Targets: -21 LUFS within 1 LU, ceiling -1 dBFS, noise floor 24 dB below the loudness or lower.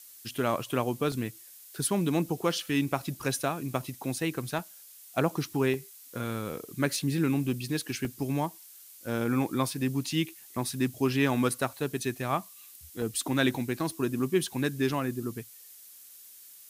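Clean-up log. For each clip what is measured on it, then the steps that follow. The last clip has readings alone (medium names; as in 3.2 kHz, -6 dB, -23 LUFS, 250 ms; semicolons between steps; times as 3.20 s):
dropouts 6; longest dropout 1.1 ms; noise floor -51 dBFS; noise floor target -55 dBFS; loudness -30.5 LUFS; peak level -10.5 dBFS; loudness target -21.0 LUFS
-> interpolate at 1.12/4.59/5.74/8.05/13.02/13.90 s, 1.1 ms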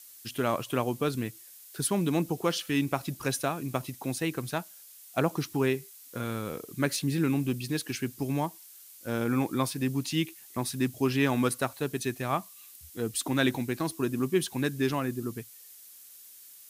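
dropouts 0; noise floor -51 dBFS; noise floor target -55 dBFS
-> noise reduction 6 dB, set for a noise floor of -51 dBFS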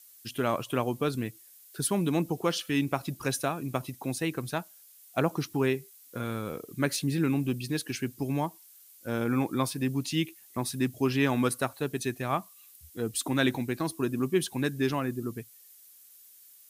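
noise floor -55 dBFS; loudness -30.5 LUFS; peak level -11.0 dBFS; loudness target -21.0 LUFS
-> trim +9.5 dB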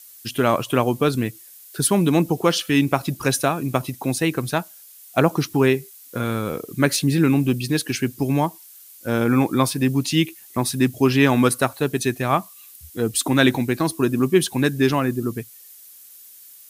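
loudness -21.0 LUFS; peak level -1.0 dBFS; noise floor -46 dBFS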